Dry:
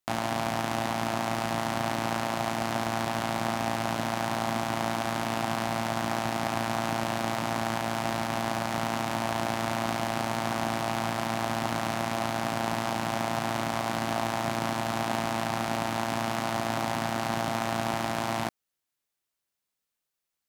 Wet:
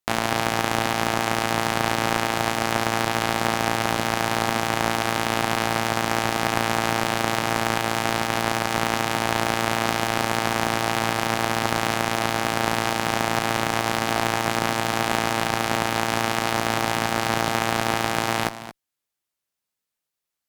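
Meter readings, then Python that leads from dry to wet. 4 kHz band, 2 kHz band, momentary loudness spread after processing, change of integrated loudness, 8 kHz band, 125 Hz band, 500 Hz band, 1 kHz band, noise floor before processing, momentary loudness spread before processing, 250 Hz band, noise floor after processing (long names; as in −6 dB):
+9.0 dB, +9.0 dB, 1 LU, +6.5 dB, +9.0 dB, +4.5 dB, +5.5 dB, +6.0 dB, −85 dBFS, 1 LU, +4.0 dB, −85 dBFS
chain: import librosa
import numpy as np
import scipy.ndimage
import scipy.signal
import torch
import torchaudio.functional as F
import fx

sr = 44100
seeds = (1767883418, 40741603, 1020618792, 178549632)

y = x + 10.0 ** (-9.0 / 20.0) * np.pad(x, (int(223 * sr / 1000.0), 0))[:len(x)]
y = fx.cheby_harmonics(y, sr, harmonics=(2, 7), levels_db=(-7, -24), full_scale_db=-11.0)
y = y * 10.0 ** (5.0 / 20.0)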